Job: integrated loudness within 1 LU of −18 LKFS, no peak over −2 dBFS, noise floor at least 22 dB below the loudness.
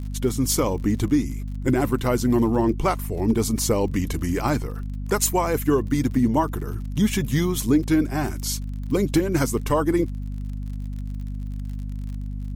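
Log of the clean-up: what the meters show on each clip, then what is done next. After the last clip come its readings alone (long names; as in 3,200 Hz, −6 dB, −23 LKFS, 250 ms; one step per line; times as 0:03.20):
crackle rate 48 per second; mains hum 50 Hz; hum harmonics up to 250 Hz; level of the hum −27 dBFS; integrated loudness −23.5 LKFS; sample peak −8.5 dBFS; target loudness −18.0 LKFS
→ click removal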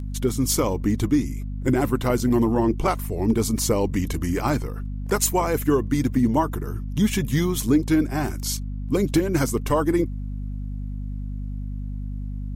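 crackle rate 0.080 per second; mains hum 50 Hz; hum harmonics up to 250 Hz; level of the hum −27 dBFS
→ hum removal 50 Hz, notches 5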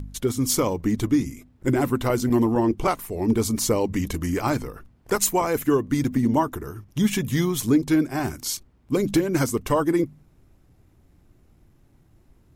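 mains hum none found; integrated loudness −23.5 LKFS; sample peak −9.5 dBFS; target loudness −18.0 LKFS
→ level +5.5 dB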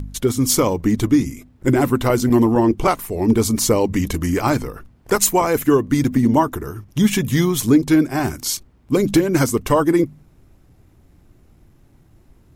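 integrated loudness −18.0 LKFS; sample peak −4.0 dBFS; background noise floor −53 dBFS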